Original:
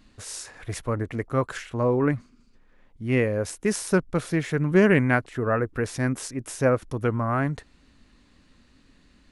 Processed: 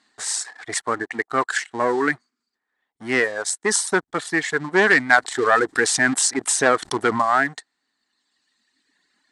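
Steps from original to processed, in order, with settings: reverb removal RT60 2 s; sample leveller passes 2; speaker cabinet 450–9300 Hz, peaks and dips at 540 Hz -10 dB, 780 Hz +5 dB, 1800 Hz +7 dB, 2600 Hz -6 dB, 4200 Hz +4 dB, 8000 Hz +8 dB; 5.18–7.22 fast leveller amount 50%; gain +2.5 dB

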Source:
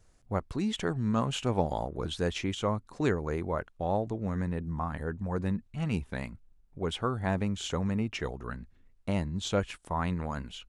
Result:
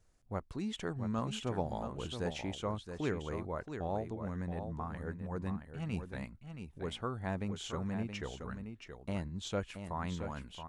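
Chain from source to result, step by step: echo 0.674 s -8 dB; gain -7.5 dB

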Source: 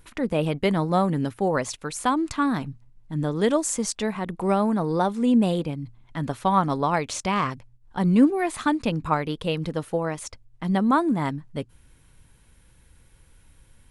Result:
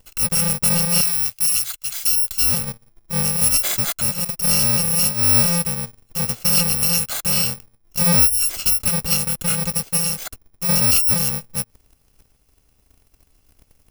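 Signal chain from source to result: FFT order left unsorted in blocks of 128 samples; 1.01–2.42 passive tone stack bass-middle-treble 10-0-10; sample leveller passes 2; gain -1 dB

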